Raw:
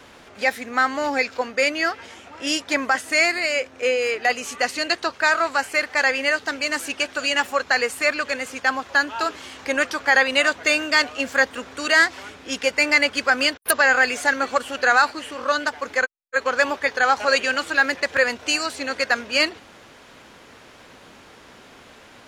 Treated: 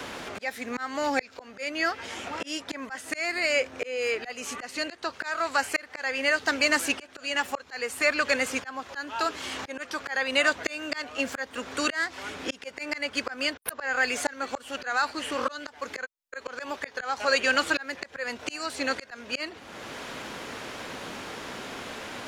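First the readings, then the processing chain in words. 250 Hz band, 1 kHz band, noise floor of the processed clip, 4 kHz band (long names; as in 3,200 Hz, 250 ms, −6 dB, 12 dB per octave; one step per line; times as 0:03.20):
−5.0 dB, −8.5 dB, −51 dBFS, −7.0 dB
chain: volume swells 658 ms
multiband upward and downward compressor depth 40%
level +3.5 dB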